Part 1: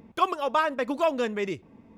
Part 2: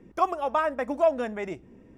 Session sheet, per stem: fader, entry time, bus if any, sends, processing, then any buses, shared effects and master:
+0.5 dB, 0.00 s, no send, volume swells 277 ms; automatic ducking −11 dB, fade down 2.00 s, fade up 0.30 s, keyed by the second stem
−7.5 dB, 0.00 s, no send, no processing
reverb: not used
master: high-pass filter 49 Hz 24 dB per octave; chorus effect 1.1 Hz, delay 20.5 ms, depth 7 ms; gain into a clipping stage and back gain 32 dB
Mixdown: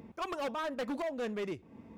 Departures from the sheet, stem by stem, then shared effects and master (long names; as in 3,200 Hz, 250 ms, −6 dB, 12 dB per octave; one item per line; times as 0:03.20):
stem 2 −7.5 dB → −14.0 dB
master: missing chorus effect 1.1 Hz, delay 20.5 ms, depth 7 ms